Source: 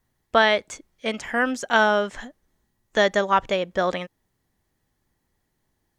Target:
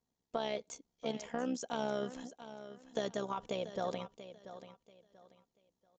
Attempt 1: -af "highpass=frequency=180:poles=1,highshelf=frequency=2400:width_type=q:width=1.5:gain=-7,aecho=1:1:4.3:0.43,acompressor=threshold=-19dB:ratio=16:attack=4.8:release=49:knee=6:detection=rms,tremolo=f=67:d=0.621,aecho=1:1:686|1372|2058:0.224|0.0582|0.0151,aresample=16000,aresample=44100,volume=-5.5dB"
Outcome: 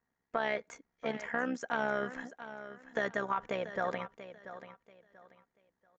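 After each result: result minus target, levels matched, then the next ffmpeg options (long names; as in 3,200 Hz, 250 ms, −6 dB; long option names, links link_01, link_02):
2,000 Hz band +9.5 dB; 4,000 Hz band −6.5 dB
-af "highpass=frequency=180:poles=1,highshelf=frequency=2400:width_type=q:width=1.5:gain=-7,aecho=1:1:4.3:0.43,acompressor=threshold=-19dB:ratio=16:attack=4.8:release=49:knee=6:detection=rms,equalizer=frequency=1800:width_type=o:width=1.3:gain=-14,tremolo=f=67:d=0.621,aecho=1:1:686|1372|2058:0.224|0.0582|0.0151,aresample=16000,aresample=44100,volume=-5.5dB"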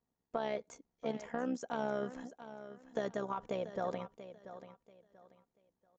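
4,000 Hz band −8.0 dB
-af "highpass=frequency=180:poles=1,aecho=1:1:4.3:0.43,acompressor=threshold=-19dB:ratio=16:attack=4.8:release=49:knee=6:detection=rms,equalizer=frequency=1800:width_type=o:width=1.3:gain=-14,tremolo=f=67:d=0.621,aecho=1:1:686|1372|2058:0.224|0.0582|0.0151,aresample=16000,aresample=44100,volume=-5.5dB"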